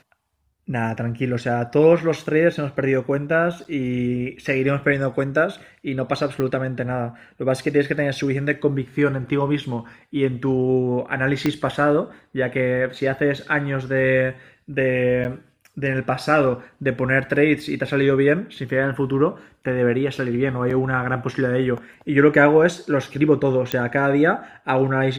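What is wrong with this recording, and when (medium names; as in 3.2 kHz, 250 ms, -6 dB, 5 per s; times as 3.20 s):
3.64–3.65 s: dropout 8.2 ms
6.40 s: pop -13 dBFS
11.46 s: pop -8 dBFS
15.24–15.25 s: dropout 9.7 ms
20.70–20.71 s: dropout 5.3 ms
23.72 s: pop -7 dBFS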